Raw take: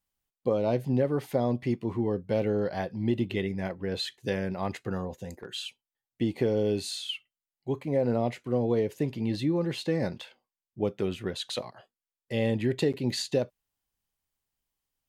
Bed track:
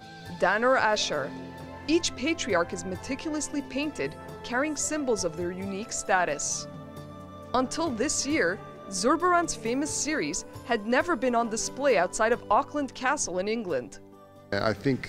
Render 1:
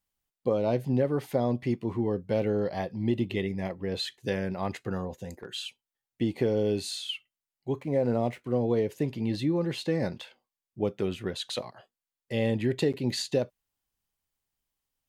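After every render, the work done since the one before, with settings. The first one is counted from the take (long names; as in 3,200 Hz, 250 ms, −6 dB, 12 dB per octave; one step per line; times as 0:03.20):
0:02.62–0:03.95: notch filter 1,500 Hz, Q 6.2
0:07.80–0:08.44: running median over 9 samples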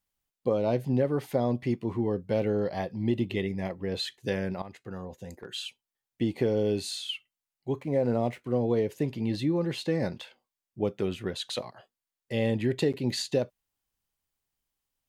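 0:04.62–0:05.55: fade in, from −15 dB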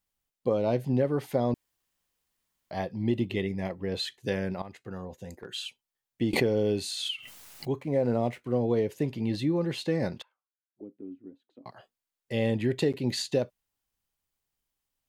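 0:01.54–0:02.71: fill with room tone
0:06.33–0:07.70: background raised ahead of every attack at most 38 dB per second
0:10.22–0:11.66: envelope filter 280–1,600 Hz, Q 11, down, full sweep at −32 dBFS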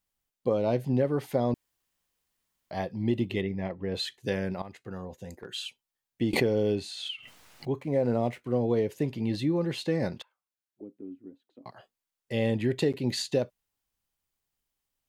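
0:03.41–0:03.95: high-frequency loss of the air 180 metres
0:06.75–0:07.75: low-pass filter 2,900 Hz 6 dB per octave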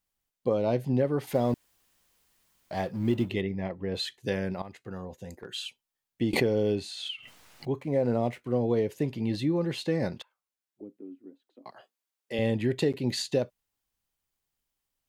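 0:01.27–0:03.30: mu-law and A-law mismatch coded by mu
0:10.97–0:12.39: high-pass filter 250 Hz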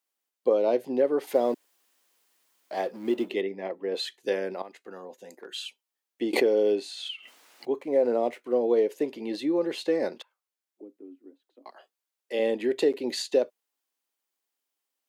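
high-pass filter 280 Hz 24 dB per octave
dynamic equaliser 460 Hz, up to +5 dB, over −40 dBFS, Q 1.1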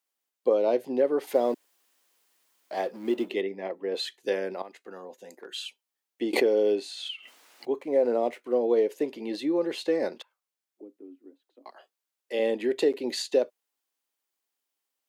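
low-shelf EQ 76 Hz −9.5 dB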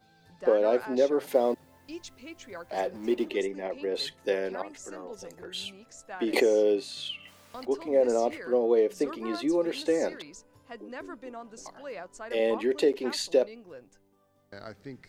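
mix in bed track −17 dB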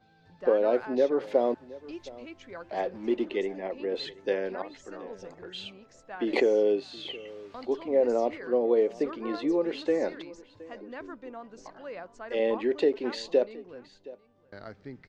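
high-frequency loss of the air 150 metres
single-tap delay 719 ms −20 dB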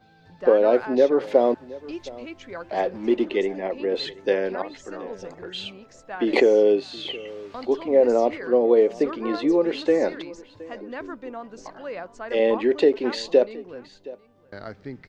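level +6.5 dB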